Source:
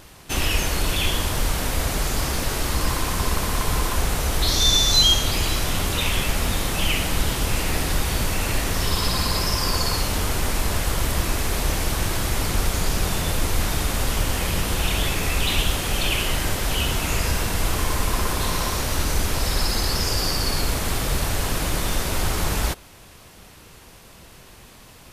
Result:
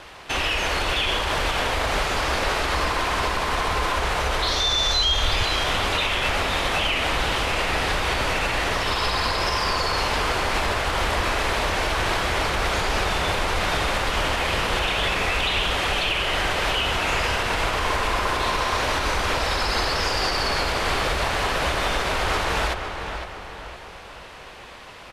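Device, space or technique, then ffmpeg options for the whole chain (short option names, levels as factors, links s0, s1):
DJ mixer with the lows and highs turned down: -filter_complex "[0:a]acrossover=split=420 4000:gain=0.2 1 0.2[s0][s1][s2];[s0][s1][s2]amix=inputs=3:normalize=0,equalizer=f=60:w=1.8:g=4,alimiter=limit=0.075:level=0:latency=1:release=100,asplit=2[s3][s4];[s4]adelay=509,lowpass=f=3400:p=1,volume=0.447,asplit=2[s5][s6];[s6]adelay=509,lowpass=f=3400:p=1,volume=0.45,asplit=2[s7][s8];[s8]adelay=509,lowpass=f=3400:p=1,volume=0.45,asplit=2[s9][s10];[s10]adelay=509,lowpass=f=3400:p=1,volume=0.45,asplit=2[s11][s12];[s12]adelay=509,lowpass=f=3400:p=1,volume=0.45[s13];[s3][s5][s7][s9][s11][s13]amix=inputs=6:normalize=0,asettb=1/sr,asplit=3[s14][s15][s16];[s14]atrim=end=4.764[s17];[s15]atrim=start=4.76:end=5.43,asetpts=PTS-STARTPTS,afade=t=in:d=0.004:c=qsin,afade=t=out:st=0.666:d=0.004:c=qsin,asubboost=boost=11.5:cutoff=120[s18];[s16]atrim=start=5.426[s19];[s17][s18]acrossfade=d=0.004:c1=hsin:c2=qsin[s20];[s20][s19]acrossfade=d=0.004:c1=qsin:c2=hsin,lowpass=10000,volume=2.66"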